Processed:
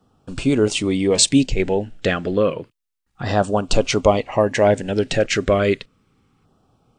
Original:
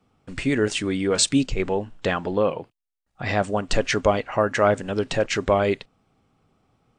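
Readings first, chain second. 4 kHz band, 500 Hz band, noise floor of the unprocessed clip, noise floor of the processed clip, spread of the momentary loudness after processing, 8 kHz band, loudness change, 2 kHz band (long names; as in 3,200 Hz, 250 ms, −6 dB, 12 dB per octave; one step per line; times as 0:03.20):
+4.5 dB, +4.0 dB, −77 dBFS, −72 dBFS, 7 LU, +5.0 dB, +4.0 dB, +1.0 dB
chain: auto-filter notch saw down 0.31 Hz 600–2,300 Hz
level +5 dB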